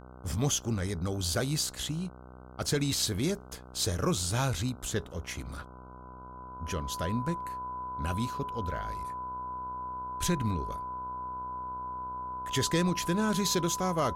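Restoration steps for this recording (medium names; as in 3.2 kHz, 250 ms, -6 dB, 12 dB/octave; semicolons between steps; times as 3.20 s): de-hum 62.9 Hz, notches 24; band-stop 1 kHz, Q 30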